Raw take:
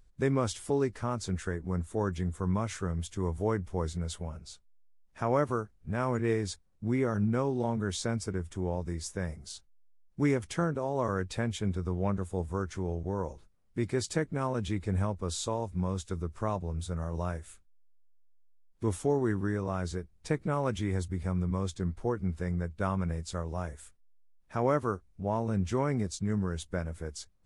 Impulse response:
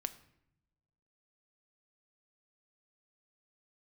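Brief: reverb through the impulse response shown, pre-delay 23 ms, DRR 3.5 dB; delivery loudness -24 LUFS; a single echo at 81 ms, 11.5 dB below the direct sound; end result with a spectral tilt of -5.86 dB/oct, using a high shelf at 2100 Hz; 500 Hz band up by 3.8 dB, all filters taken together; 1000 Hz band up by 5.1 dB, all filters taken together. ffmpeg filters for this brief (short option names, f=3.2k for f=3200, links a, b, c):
-filter_complex "[0:a]equalizer=f=500:t=o:g=3.5,equalizer=f=1k:t=o:g=6.5,highshelf=f=2.1k:g=-5.5,aecho=1:1:81:0.266,asplit=2[a][b];[1:a]atrim=start_sample=2205,adelay=23[c];[b][c]afir=irnorm=-1:irlink=0,volume=-2.5dB[d];[a][d]amix=inputs=2:normalize=0,volume=4.5dB"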